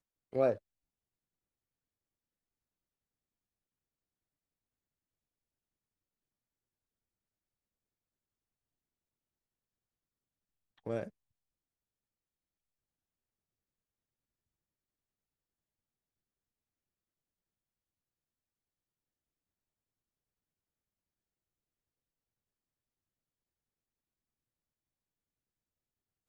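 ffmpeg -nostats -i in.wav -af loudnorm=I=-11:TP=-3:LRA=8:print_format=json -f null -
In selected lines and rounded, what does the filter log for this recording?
"input_i" : "-35.4",
"input_tp" : "-17.4",
"input_lra" : "17.2",
"input_thresh" : "-46.2",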